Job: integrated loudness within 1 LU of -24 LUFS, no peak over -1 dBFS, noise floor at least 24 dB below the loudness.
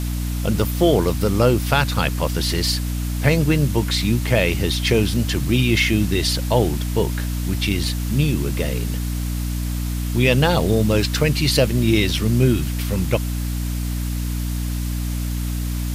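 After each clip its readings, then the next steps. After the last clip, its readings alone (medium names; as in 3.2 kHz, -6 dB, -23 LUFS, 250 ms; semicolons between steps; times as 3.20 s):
hum 60 Hz; highest harmonic 300 Hz; hum level -21 dBFS; noise floor -24 dBFS; noise floor target -45 dBFS; loudness -20.5 LUFS; peak level -2.5 dBFS; loudness target -24.0 LUFS
-> hum notches 60/120/180/240/300 Hz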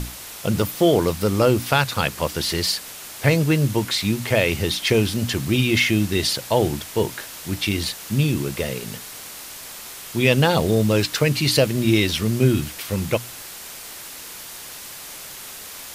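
hum not found; noise floor -37 dBFS; noise floor target -45 dBFS
-> noise reduction 8 dB, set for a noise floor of -37 dBFS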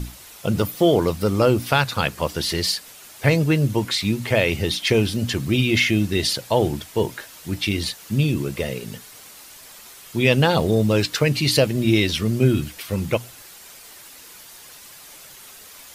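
noise floor -44 dBFS; noise floor target -45 dBFS
-> noise reduction 6 dB, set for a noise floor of -44 dBFS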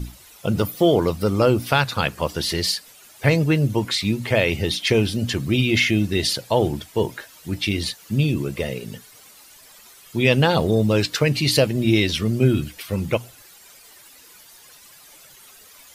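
noise floor -48 dBFS; loudness -21.0 LUFS; peak level -3.5 dBFS; loudness target -24.0 LUFS
-> trim -3 dB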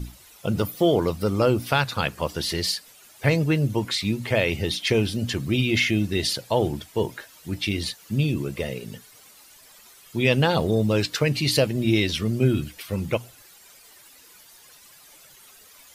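loudness -24.0 LUFS; peak level -6.5 dBFS; noise floor -51 dBFS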